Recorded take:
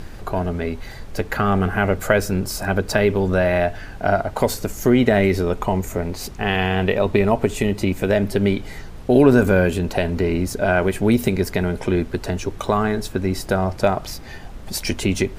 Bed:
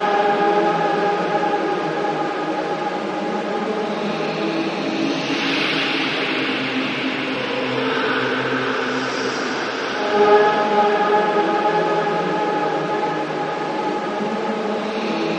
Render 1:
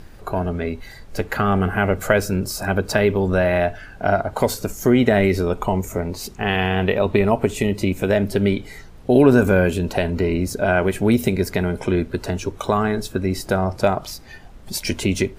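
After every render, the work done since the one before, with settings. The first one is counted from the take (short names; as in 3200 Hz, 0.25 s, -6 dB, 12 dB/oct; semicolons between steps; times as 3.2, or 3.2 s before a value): noise print and reduce 7 dB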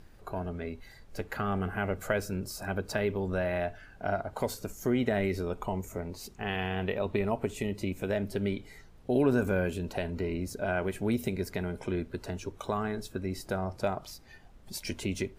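gain -12.5 dB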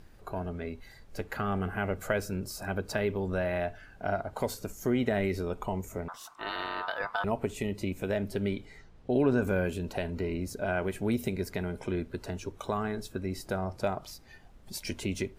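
6.08–7.24 ring modulator 1100 Hz; 8.65–9.43 air absorption 64 m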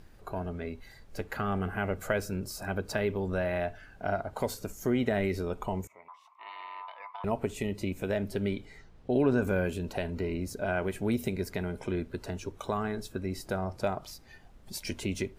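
5.87–7.24 double band-pass 1500 Hz, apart 1.1 oct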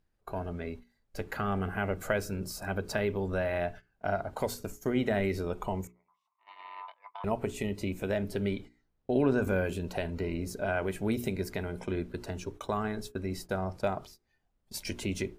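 gate -42 dBFS, range -22 dB; notches 60/120/180/240/300/360/420 Hz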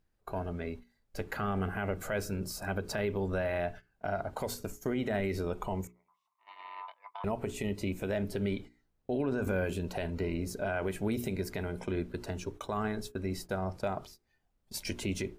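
limiter -23 dBFS, peak gain reduction 8 dB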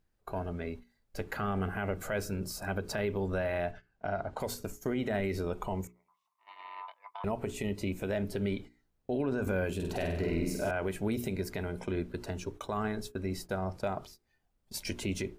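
3.71–4.4 air absorption 59 m; 9.75–10.71 flutter echo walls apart 8.3 m, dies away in 0.86 s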